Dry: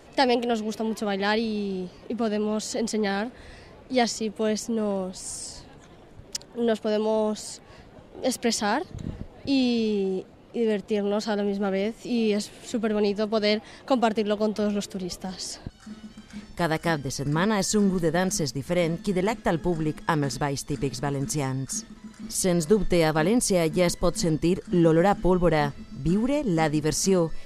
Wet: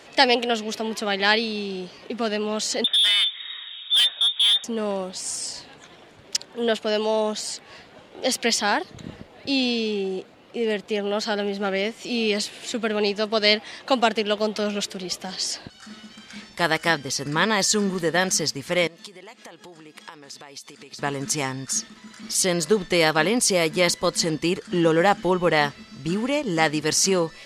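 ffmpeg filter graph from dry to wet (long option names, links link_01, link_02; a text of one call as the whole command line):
ffmpeg -i in.wav -filter_complex "[0:a]asettb=1/sr,asplit=3[link_01][link_02][link_03];[link_01]atrim=end=2.844[link_04];[link_02]atrim=start=2.84:end=4.64,asetpts=PTS-STARTPTS,afade=type=in:duration=0.004:curve=qsin,afade=type=out:start_time=1.796:duration=0.004:curve=qsin,bandreject=frequency=1000:width=5.9,lowpass=frequency=3200:width_type=q:width=0.5098,lowpass=frequency=3200:width_type=q:width=0.6013,lowpass=frequency=3200:width_type=q:width=0.9,lowpass=frequency=3200:width_type=q:width=2.563,afreqshift=-3800,asoftclip=type=hard:threshold=-25dB[link_05];[link_03]atrim=start=4.636[link_06];[link_04][link_05]acrossfade=duration=0.004:curve1=hsin:curve2=qsin[link_07];[link_07][link_06]acrossfade=duration=0.004:curve1=qsin:curve2=hsin,asettb=1/sr,asplit=3[link_08][link_09][link_10];[link_08]atrim=end=8.504[link_11];[link_09]atrim=start=8.5:end=11.35,asetpts=PTS-STARTPTS,afade=type=in:duration=0.004:curve=qsin,afade=type=out:start_time=2.846:duration=0.004:curve=qsin,lowpass=frequency=2200:poles=1,aemphasis=mode=production:type=50fm[link_12];[link_10]atrim=start=11.346[link_13];[link_11][link_12]acrossfade=duration=0.004:curve1=hsin:curve2=qsin[link_14];[link_14][link_13]acrossfade=duration=0.004:curve1=qsin:curve2=hsin,asettb=1/sr,asplit=3[link_15][link_16][link_17];[link_15]atrim=end=18.874[link_18];[link_16]atrim=start=18.87:end=20.99,asetpts=PTS-STARTPTS,afade=type=in:duration=0.004:curve=qsin,afade=type=out:start_time=2.116:duration=0.004:curve=qsin,highpass=frequency=410:poles=1,equalizer=frequency=1600:width_type=o:width=0.62:gain=-4,acompressor=threshold=-41dB:ratio=16:attack=3.2:release=140:knee=1:detection=peak[link_19];[link_17]atrim=start=20.986[link_20];[link_18][link_19]acrossfade=duration=0.004:curve1=hsin:curve2=qsin[link_21];[link_21][link_20]acrossfade=duration=0.004:curve1=qsin:curve2=hsin,highpass=frequency=240:poles=1,equalizer=frequency=3100:width=0.45:gain=9,volume=1dB" out.wav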